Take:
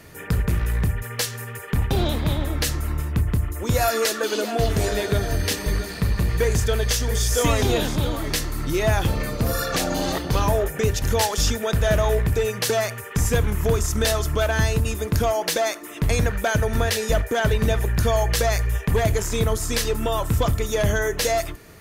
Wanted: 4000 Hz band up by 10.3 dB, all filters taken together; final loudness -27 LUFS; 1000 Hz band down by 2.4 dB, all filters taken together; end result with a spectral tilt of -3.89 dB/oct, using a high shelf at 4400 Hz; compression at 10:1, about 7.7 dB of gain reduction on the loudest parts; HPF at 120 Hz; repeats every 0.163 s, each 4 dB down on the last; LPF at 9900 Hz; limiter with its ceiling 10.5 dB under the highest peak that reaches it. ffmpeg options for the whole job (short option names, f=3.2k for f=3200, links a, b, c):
-af "highpass=120,lowpass=9.9k,equalizer=f=1k:t=o:g=-4.5,equalizer=f=4k:t=o:g=8.5,highshelf=f=4.4k:g=8,acompressor=threshold=-20dB:ratio=10,alimiter=limit=-15dB:level=0:latency=1,aecho=1:1:163|326|489|652|815|978|1141|1304|1467:0.631|0.398|0.25|0.158|0.0994|0.0626|0.0394|0.0249|0.0157,volume=-3.5dB"